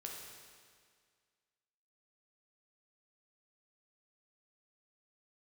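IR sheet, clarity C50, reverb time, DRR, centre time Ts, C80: 1.5 dB, 1.9 s, -1.5 dB, 83 ms, 3.0 dB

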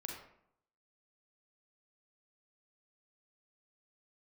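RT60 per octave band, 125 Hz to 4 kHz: 0.80, 0.80, 0.70, 0.70, 0.55, 0.40 s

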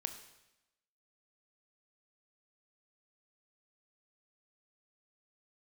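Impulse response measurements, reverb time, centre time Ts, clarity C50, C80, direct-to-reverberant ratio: 0.95 s, 15 ms, 10.0 dB, 11.5 dB, 7.0 dB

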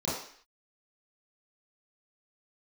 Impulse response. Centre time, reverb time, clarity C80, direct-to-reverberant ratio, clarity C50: 55 ms, 0.55 s, 6.0 dB, -11.0 dB, 2.0 dB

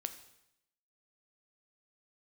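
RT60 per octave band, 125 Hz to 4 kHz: 0.80, 0.85, 0.80, 0.80, 0.80, 0.80 s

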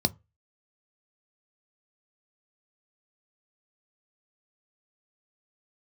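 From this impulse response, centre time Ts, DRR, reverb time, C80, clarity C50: 3 ms, 11.5 dB, not exponential, 34.0 dB, 26.5 dB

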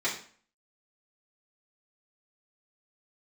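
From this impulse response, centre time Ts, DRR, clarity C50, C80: 26 ms, -8.0 dB, 7.5 dB, 11.5 dB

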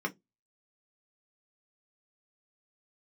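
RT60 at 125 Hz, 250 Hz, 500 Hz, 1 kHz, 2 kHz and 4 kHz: 0.30, 0.25, 0.20, 0.15, 0.10, 0.15 s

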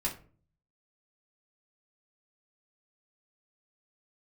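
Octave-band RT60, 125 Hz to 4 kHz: 0.80, 0.60, 0.45, 0.35, 0.30, 0.25 s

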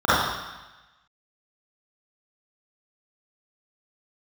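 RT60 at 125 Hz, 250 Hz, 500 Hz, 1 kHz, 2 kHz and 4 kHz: 1.1, 1.0, 1.0, 1.1, 1.2, 1.2 s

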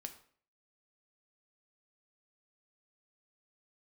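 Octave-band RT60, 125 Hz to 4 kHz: 0.50, 0.55, 0.55, 0.50, 0.45, 0.40 s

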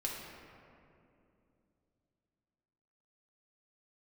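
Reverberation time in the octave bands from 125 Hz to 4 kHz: 3.8, 3.7, 3.1, 2.4, 2.0, 1.3 s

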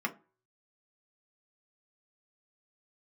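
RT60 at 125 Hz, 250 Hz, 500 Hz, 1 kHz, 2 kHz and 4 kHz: 0.40, 0.35, 0.40, 0.35, 0.25, 0.20 s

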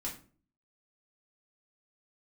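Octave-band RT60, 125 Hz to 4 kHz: 0.60, 0.60, 0.45, 0.35, 0.30, 0.25 s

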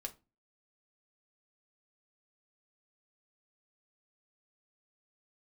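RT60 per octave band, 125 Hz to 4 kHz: 0.45, 0.45, 0.30, 0.25, 0.20, 0.20 s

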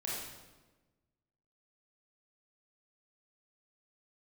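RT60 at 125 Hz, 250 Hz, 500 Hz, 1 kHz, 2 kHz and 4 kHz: 1.6, 1.5, 1.3, 1.1, 1.0, 0.90 s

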